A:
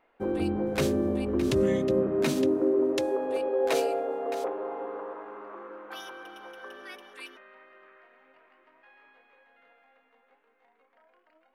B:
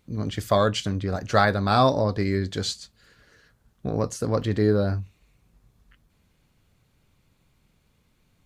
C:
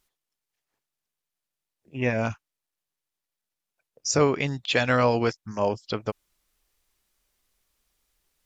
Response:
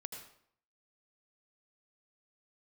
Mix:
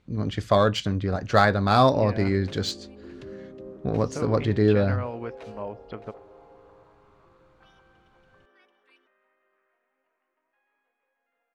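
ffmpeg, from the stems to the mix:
-filter_complex "[0:a]adelay=1700,volume=-16.5dB[link_01];[1:a]volume=1dB[link_02];[2:a]lowpass=2400,acompressor=threshold=-25dB:ratio=2,volume=-8dB,asplit=2[link_03][link_04];[link_04]volume=-15.5dB[link_05];[3:a]atrim=start_sample=2205[link_06];[link_05][link_06]afir=irnorm=-1:irlink=0[link_07];[link_01][link_02][link_03][link_07]amix=inputs=4:normalize=0,adynamicsmooth=sensitivity=1.5:basefreq=5100"

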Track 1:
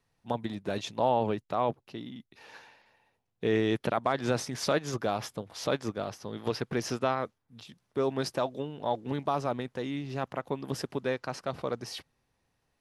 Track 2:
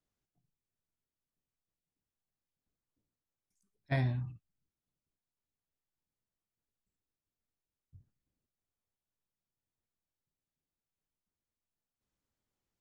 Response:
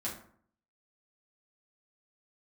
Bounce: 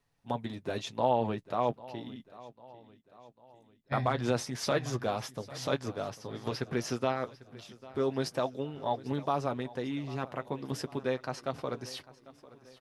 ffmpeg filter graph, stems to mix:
-filter_complex "[0:a]flanger=delay=7:depth=1.5:regen=-38:speed=0.33:shape=triangular,volume=2dB,asplit=3[link_01][link_02][link_03];[link_01]atrim=end=2.32,asetpts=PTS-STARTPTS,afade=type=out:start_time=2.316:duration=0.004:curve=hsin[link_04];[link_02]atrim=start=2.32:end=3.92,asetpts=PTS-STARTPTS,volume=0[link_05];[link_03]atrim=start=3.92,asetpts=PTS-STARTPTS,afade=type=in:duration=0.004:curve=hsin[link_06];[link_04][link_05][link_06]concat=n=3:v=0:a=1,asplit=2[link_07][link_08];[link_08]volume=-19.5dB[link_09];[1:a]volume=-3.5dB,asplit=2[link_10][link_11];[link_11]volume=-7.5dB[link_12];[link_09][link_12]amix=inputs=2:normalize=0,aecho=0:1:797|1594|2391|3188|3985|4782|5579:1|0.5|0.25|0.125|0.0625|0.0312|0.0156[link_13];[link_07][link_10][link_13]amix=inputs=3:normalize=0"

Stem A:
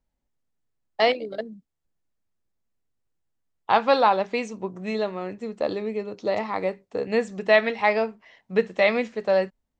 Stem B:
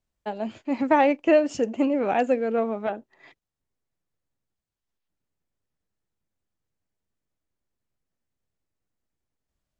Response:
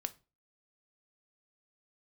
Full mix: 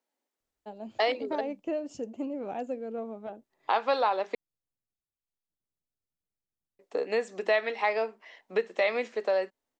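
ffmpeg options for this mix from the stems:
-filter_complex "[0:a]highpass=frequency=300:width=0.5412,highpass=frequency=300:width=1.3066,volume=1.5dB,asplit=3[link_01][link_02][link_03];[link_01]atrim=end=4.35,asetpts=PTS-STARTPTS,afade=type=out:start_time=4.346:duration=0.004:curve=hsin[link_04];[link_02]atrim=start=4.35:end=6.79,asetpts=PTS-STARTPTS,volume=0[link_05];[link_03]atrim=start=6.79,asetpts=PTS-STARTPTS,afade=type=in:duration=0.004:curve=hsin[link_06];[link_04][link_05][link_06]concat=n=3:v=0:a=1[link_07];[1:a]equalizer=frequency=1900:width=0.96:gain=-9,adelay=400,volume=-10.5dB[link_08];[link_07][link_08]amix=inputs=2:normalize=0,acompressor=threshold=-29dB:ratio=2"

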